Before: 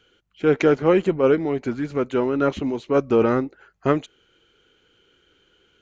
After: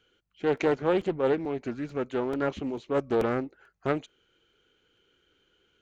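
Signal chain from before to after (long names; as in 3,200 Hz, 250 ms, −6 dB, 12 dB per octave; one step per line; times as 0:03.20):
regular buffer underruns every 0.44 s, samples 128, repeat, from 0:00.57
highs frequency-modulated by the lows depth 0.24 ms
level −7.5 dB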